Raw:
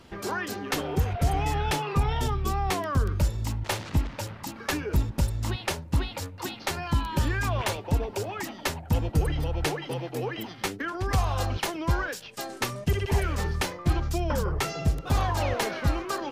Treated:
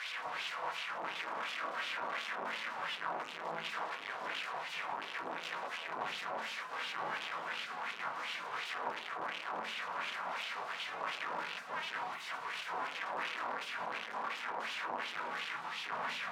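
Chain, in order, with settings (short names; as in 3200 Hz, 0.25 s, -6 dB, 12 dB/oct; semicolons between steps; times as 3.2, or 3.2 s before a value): infinite clipping; spectral gate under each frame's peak -15 dB weak; high shelf 5200 Hz -12 dB; in parallel at -4 dB: wrapped overs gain 36 dB; on the sum: LFO band-pass sine 2.8 Hz 820–3000 Hz; on a send at -2 dB: reverb RT60 0.45 s, pre-delay 3 ms; on the sum: gain +1 dB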